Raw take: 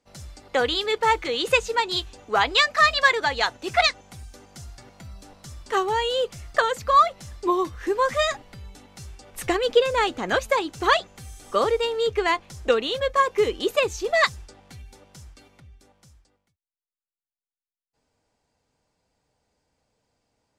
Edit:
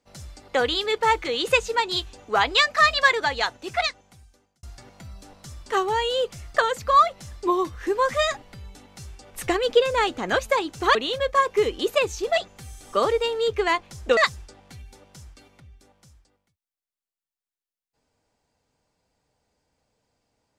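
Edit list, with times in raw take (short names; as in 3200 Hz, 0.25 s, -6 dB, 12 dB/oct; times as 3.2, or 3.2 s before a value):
3.21–4.63 fade out
12.76–14.17 move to 10.95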